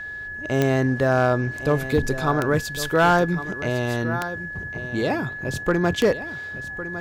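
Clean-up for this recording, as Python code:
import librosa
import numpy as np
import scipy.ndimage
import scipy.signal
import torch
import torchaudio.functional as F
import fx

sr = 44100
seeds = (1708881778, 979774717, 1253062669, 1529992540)

y = fx.fix_declip(x, sr, threshold_db=-11.0)
y = fx.fix_declick_ar(y, sr, threshold=10.0)
y = fx.notch(y, sr, hz=1700.0, q=30.0)
y = fx.fix_echo_inverse(y, sr, delay_ms=1106, level_db=-13.0)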